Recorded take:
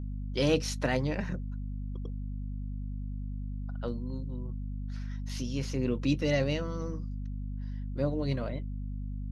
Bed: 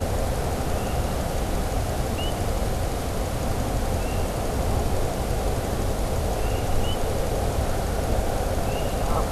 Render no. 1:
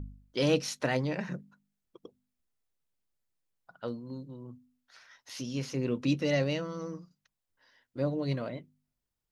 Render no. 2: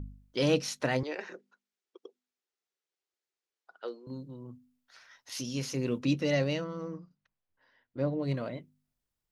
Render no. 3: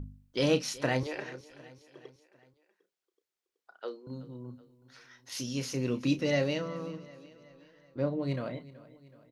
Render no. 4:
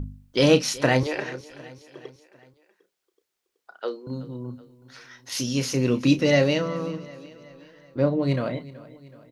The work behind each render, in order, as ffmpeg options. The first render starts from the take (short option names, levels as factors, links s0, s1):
-af "bandreject=f=50:t=h:w=4,bandreject=f=100:t=h:w=4,bandreject=f=150:t=h:w=4,bandreject=f=200:t=h:w=4,bandreject=f=250:t=h:w=4"
-filter_complex "[0:a]asettb=1/sr,asplit=3[s0][s1][s2];[s0]atrim=end=1.034[s3];[s1]atrim=start=1.03:end=4.07,asetpts=PTS-STARTPTS,afade=t=in:d=0.004:c=qsin,afade=t=out:st=3.036:d=0.004:c=qsin,highpass=f=370:w=0.5412,highpass=f=370:w=1.3066,equalizer=f=380:t=q:w=4:g=6,equalizer=f=610:t=q:w=4:g=-5,equalizer=f=990:t=q:w=4:g=-4,lowpass=f=7300:w=0.5412,lowpass=f=7300:w=1.3066[s4];[s2]atrim=start=4.066[s5];[s3][s4]acrossfade=d=0.004:c1=hsin:c2=qsin[s6];[s6][s5]acrossfade=d=0.004:c1=qsin:c2=hsin,asettb=1/sr,asplit=3[s7][s8][s9];[s7]atrim=end=5.324[s10];[s8]atrim=start=5.32:end=5.99,asetpts=PTS-STARTPTS,afade=t=in:d=0.004:c=qsin,afade=t=out:st=0.666:d=0.004:c=qsin,aemphasis=mode=production:type=cd[s11];[s9]atrim=start=5.986[s12];[s10][s11]acrossfade=d=0.004:c1=hsin:c2=qsin[s13];[s13][s12]acrossfade=d=0.004:c1=qsin:c2=hsin,asettb=1/sr,asplit=3[s14][s15][s16];[s14]atrim=end=6.644[s17];[s15]atrim=start=6.64:end=8.34,asetpts=PTS-STARTPTS,afade=t=in:d=0.004:c=qsin,afade=t=out:st=1.696:d=0.004:c=qsin,adynamicsmooth=sensitivity=5.5:basefreq=3200[s18];[s16]atrim=start=8.336[s19];[s17][s18]acrossfade=d=0.004:c1=hsin:c2=qsin[s20];[s20][s19]acrossfade=d=0.004:c1=qsin:c2=hsin"
-filter_complex "[0:a]asplit=2[s0][s1];[s1]adelay=32,volume=0.282[s2];[s0][s2]amix=inputs=2:normalize=0,aecho=1:1:376|752|1128|1504:0.112|0.0606|0.0327|0.0177"
-af "volume=2.82"